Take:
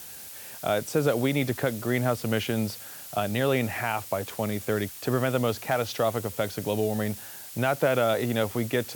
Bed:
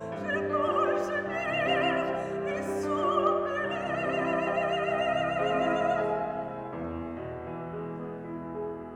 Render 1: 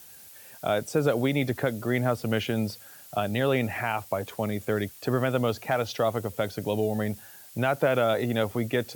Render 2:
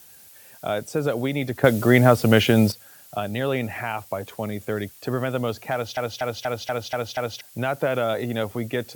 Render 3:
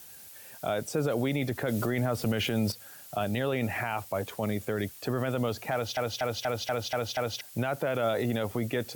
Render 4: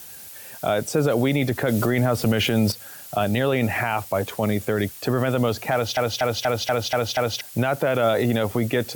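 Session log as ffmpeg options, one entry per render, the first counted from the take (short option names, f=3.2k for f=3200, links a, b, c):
-af "afftdn=nr=8:nf=-42"
-filter_complex "[0:a]asplit=10[a][b][c][d][e][f][g][h][i][j];[a]atrim=end=1.642[k];[b]atrim=start=1.638:end=2.722,asetpts=PTS-STARTPTS,volume=10.5dB[l];[c]atrim=start=2.718:end=5.972[m];[d]atrim=start=5.728:end=5.972[n];[e]atrim=start=5.728:end=5.972[o];[f]atrim=start=5.728:end=5.972[p];[g]atrim=start=5.728:end=5.972[q];[h]atrim=start=5.728:end=5.972[r];[i]atrim=start=5.728:end=5.972[s];[j]atrim=start=7.408[t];[k][l]acrossfade=d=0.004:c1=hsin:c2=hsin[u];[u][m]acrossfade=d=0.004:c1=hsin:c2=hsin[v];[v][n]acrossfade=d=0.004:c1=hsin:c2=hsin[w];[w][o]acrossfade=d=0.004:c1=hsin:c2=hsin[x];[x][p]acrossfade=d=0.004:c1=hsin:c2=hsin[y];[y][q]acrossfade=d=0.004:c1=hsin:c2=hsin[z];[z][r]acrossfade=d=0.004:c1=hsin:c2=hsin[aa];[aa][s]acrossfade=d=0.004:c1=hsin:c2=hsin[ab];[ab][t]acrossfade=d=0.004:c1=hsin:c2=hsin"
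-af "acompressor=threshold=-21dB:ratio=3,alimiter=limit=-19.5dB:level=0:latency=1:release=15"
-af "volume=8dB"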